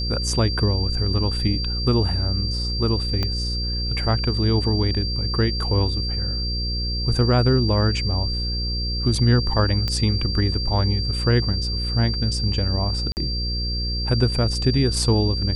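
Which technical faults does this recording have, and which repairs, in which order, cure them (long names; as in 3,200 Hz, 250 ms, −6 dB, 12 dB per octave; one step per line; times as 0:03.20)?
mains buzz 60 Hz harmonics 9 −26 dBFS
whistle 4,700 Hz −27 dBFS
0:03.23: click −11 dBFS
0:09.88: click −12 dBFS
0:13.12–0:13.17: drop-out 49 ms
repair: click removal
notch filter 4,700 Hz, Q 30
hum removal 60 Hz, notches 9
repair the gap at 0:13.12, 49 ms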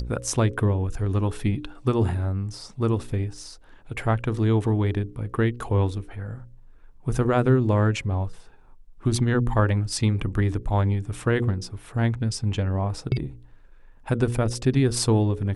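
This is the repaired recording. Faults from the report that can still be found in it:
0:03.23: click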